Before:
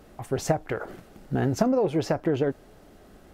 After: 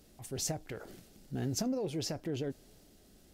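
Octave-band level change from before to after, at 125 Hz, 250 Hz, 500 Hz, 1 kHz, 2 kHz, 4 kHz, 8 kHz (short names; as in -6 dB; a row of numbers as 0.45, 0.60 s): -9.5, -10.5, -13.5, -16.0, -13.5, 0.0, +1.5 dB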